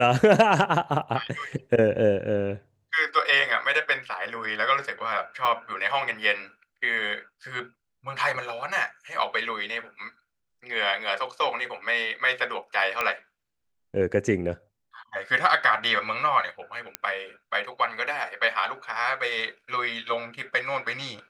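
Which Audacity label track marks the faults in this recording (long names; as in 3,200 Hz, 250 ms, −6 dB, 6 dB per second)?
5.450000	5.450000	drop-out 2.1 ms
13.010000	13.010000	click −11 dBFS
16.950000	16.950000	click −10 dBFS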